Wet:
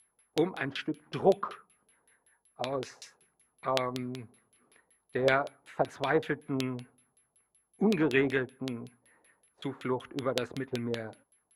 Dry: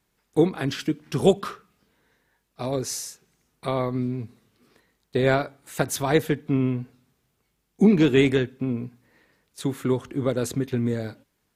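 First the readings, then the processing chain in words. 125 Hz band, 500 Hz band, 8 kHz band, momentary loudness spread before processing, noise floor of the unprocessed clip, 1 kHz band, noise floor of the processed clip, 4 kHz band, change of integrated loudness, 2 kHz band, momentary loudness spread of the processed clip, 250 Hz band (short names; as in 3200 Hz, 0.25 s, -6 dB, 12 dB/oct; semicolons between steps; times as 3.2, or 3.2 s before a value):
-12.5 dB, -6.5 dB, -15.5 dB, 15 LU, -74 dBFS, -2.5 dB, -78 dBFS, -5.5 dB, -7.5 dB, -2.5 dB, 15 LU, -10.0 dB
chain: tilt shelf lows +8 dB, about 1400 Hz; whine 11000 Hz -47 dBFS; LFO low-pass saw down 5.3 Hz 580–3500 Hz; pre-emphasis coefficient 0.97; gain +8.5 dB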